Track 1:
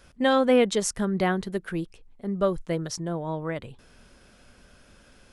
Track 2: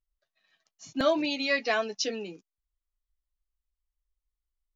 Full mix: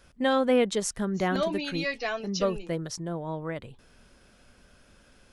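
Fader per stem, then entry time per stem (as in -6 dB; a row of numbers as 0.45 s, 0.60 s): -3.0 dB, -4.0 dB; 0.00 s, 0.35 s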